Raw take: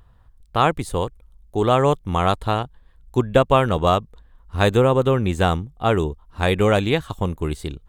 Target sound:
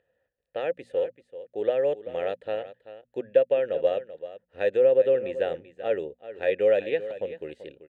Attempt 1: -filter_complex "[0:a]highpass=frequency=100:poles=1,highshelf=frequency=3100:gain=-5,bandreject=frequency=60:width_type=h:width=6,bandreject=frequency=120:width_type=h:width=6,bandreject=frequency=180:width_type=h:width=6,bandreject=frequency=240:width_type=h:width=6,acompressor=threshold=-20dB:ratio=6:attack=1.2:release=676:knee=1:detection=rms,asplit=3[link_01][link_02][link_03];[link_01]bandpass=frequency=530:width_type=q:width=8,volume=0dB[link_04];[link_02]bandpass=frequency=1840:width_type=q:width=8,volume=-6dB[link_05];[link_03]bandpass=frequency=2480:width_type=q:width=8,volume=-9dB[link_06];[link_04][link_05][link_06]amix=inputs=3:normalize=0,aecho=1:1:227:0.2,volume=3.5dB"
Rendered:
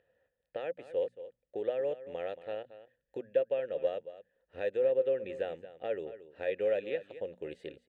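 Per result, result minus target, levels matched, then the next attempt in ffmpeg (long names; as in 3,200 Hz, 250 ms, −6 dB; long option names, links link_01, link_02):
downward compressor: peak gain reduction +8.5 dB; echo 159 ms early
-filter_complex "[0:a]highpass=frequency=100:poles=1,highshelf=frequency=3100:gain=-5,bandreject=frequency=60:width_type=h:width=6,bandreject=frequency=120:width_type=h:width=6,bandreject=frequency=180:width_type=h:width=6,bandreject=frequency=240:width_type=h:width=6,acompressor=threshold=-9.5dB:ratio=6:attack=1.2:release=676:knee=1:detection=rms,asplit=3[link_01][link_02][link_03];[link_01]bandpass=frequency=530:width_type=q:width=8,volume=0dB[link_04];[link_02]bandpass=frequency=1840:width_type=q:width=8,volume=-6dB[link_05];[link_03]bandpass=frequency=2480:width_type=q:width=8,volume=-9dB[link_06];[link_04][link_05][link_06]amix=inputs=3:normalize=0,aecho=1:1:227:0.2,volume=3.5dB"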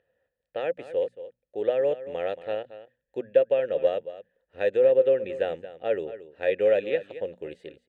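echo 159 ms early
-filter_complex "[0:a]highpass=frequency=100:poles=1,highshelf=frequency=3100:gain=-5,bandreject=frequency=60:width_type=h:width=6,bandreject=frequency=120:width_type=h:width=6,bandreject=frequency=180:width_type=h:width=6,bandreject=frequency=240:width_type=h:width=6,acompressor=threshold=-9.5dB:ratio=6:attack=1.2:release=676:knee=1:detection=rms,asplit=3[link_01][link_02][link_03];[link_01]bandpass=frequency=530:width_type=q:width=8,volume=0dB[link_04];[link_02]bandpass=frequency=1840:width_type=q:width=8,volume=-6dB[link_05];[link_03]bandpass=frequency=2480:width_type=q:width=8,volume=-9dB[link_06];[link_04][link_05][link_06]amix=inputs=3:normalize=0,aecho=1:1:386:0.2,volume=3.5dB"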